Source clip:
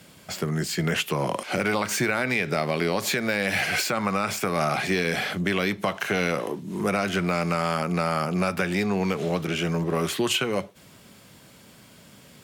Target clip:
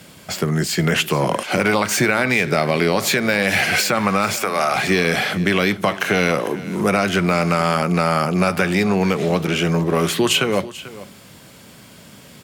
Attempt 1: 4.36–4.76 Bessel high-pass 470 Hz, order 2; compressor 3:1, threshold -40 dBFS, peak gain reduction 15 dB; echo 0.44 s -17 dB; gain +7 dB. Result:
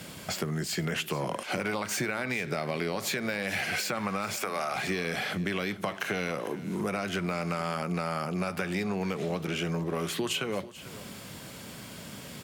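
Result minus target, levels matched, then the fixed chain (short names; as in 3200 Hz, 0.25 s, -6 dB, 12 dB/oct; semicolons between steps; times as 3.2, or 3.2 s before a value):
compressor: peak gain reduction +15 dB
4.36–4.76 Bessel high-pass 470 Hz, order 2; echo 0.44 s -17 dB; gain +7 dB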